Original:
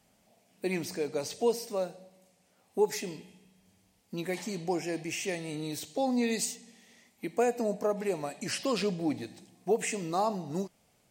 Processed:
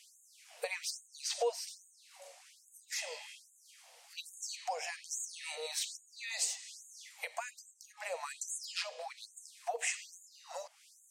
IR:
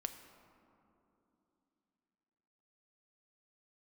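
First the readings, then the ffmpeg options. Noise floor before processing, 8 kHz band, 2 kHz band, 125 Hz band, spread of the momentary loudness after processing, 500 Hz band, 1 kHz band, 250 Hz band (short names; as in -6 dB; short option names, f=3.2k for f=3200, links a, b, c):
-69 dBFS, +0.5 dB, -2.0 dB, under -40 dB, 21 LU, -12.5 dB, -8.0 dB, under -40 dB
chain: -af "acompressor=threshold=-43dB:ratio=6,lowpass=10k,afftfilt=real='re*gte(b*sr/1024,440*pow(6500/440,0.5+0.5*sin(2*PI*1.2*pts/sr)))':imag='im*gte(b*sr/1024,440*pow(6500/440,0.5+0.5*sin(2*PI*1.2*pts/sr)))':win_size=1024:overlap=0.75,volume=13.5dB"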